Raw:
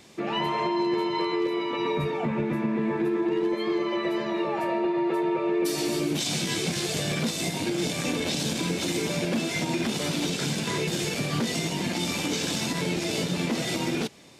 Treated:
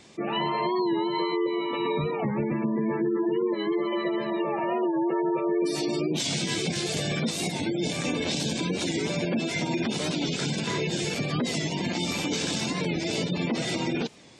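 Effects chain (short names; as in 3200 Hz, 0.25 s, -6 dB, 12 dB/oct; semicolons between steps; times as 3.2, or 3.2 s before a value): spectral gate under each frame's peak -25 dB strong; record warp 45 rpm, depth 100 cents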